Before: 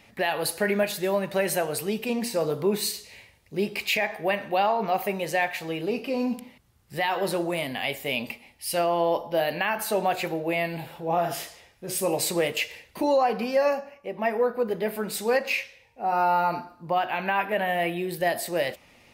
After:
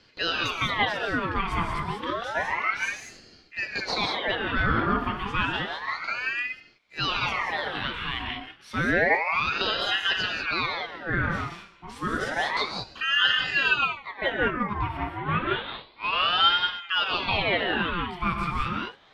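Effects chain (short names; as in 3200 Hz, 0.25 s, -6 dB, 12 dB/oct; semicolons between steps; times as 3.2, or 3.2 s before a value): 15.01–16.6 CVSD 16 kbps; LPF 2200 Hz 12 dB/oct; low shelf 490 Hz -11 dB; non-linear reverb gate 0.22 s rising, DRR 1 dB; ring modulator with a swept carrier 1400 Hz, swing 65%, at 0.3 Hz; gain +4.5 dB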